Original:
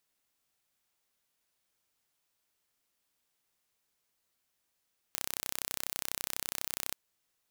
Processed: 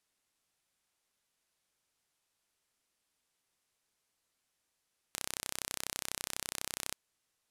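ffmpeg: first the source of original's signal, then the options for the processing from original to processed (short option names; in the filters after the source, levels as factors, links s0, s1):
-f lavfi -i "aevalsrc='0.447*eq(mod(n,1374),0)':d=1.8:s=44100"
-af "lowpass=f=12000:w=0.5412,lowpass=f=12000:w=1.3066"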